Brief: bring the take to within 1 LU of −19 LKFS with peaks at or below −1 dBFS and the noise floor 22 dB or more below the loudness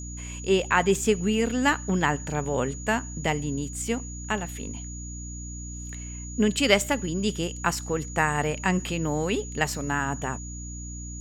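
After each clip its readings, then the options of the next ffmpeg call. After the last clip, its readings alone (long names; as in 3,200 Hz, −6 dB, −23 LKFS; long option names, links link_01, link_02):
mains hum 60 Hz; hum harmonics up to 300 Hz; level of the hum −35 dBFS; interfering tone 6,800 Hz; level of the tone −40 dBFS; integrated loudness −26.5 LKFS; sample peak −5.0 dBFS; target loudness −19.0 LKFS
→ -af "bandreject=frequency=60:width_type=h:width=4,bandreject=frequency=120:width_type=h:width=4,bandreject=frequency=180:width_type=h:width=4,bandreject=frequency=240:width_type=h:width=4,bandreject=frequency=300:width_type=h:width=4"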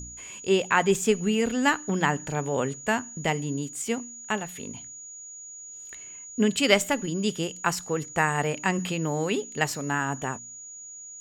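mains hum none found; interfering tone 6,800 Hz; level of the tone −40 dBFS
→ -af "bandreject=frequency=6800:width=30"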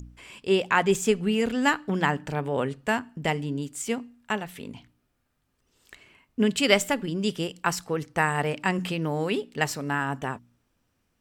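interfering tone none found; integrated loudness −26.5 LKFS; sample peak −5.5 dBFS; target loudness −19.0 LKFS
→ -af "volume=7.5dB,alimiter=limit=-1dB:level=0:latency=1"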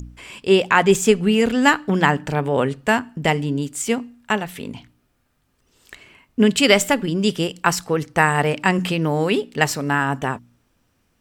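integrated loudness −19.0 LKFS; sample peak −1.0 dBFS; background noise floor −66 dBFS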